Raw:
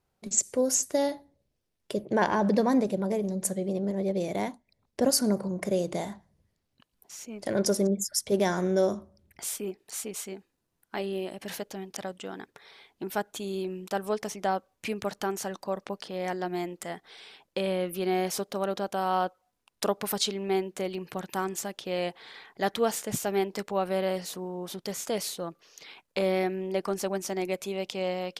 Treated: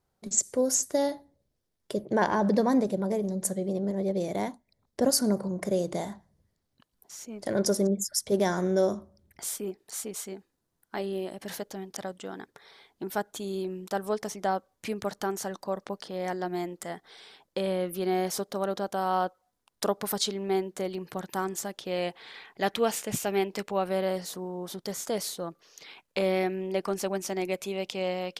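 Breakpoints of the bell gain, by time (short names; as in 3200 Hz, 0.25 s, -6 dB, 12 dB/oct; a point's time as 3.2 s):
bell 2600 Hz 0.5 oct
21.59 s -6 dB
22.37 s +4.5 dB
23.6 s +4.5 dB
24.16 s -6 dB
25.46 s -6 dB
26.04 s +1.5 dB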